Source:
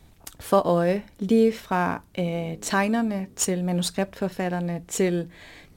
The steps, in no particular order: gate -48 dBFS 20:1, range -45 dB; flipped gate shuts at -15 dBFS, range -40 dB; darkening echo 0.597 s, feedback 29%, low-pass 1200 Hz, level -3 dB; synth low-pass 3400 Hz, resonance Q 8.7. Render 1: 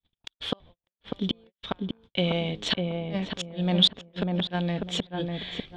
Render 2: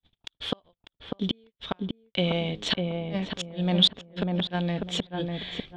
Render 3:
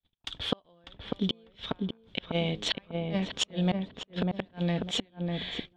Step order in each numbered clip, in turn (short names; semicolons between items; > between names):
flipped gate > darkening echo > gate > synth low-pass; flipped gate > synth low-pass > gate > darkening echo; gate > synth low-pass > flipped gate > darkening echo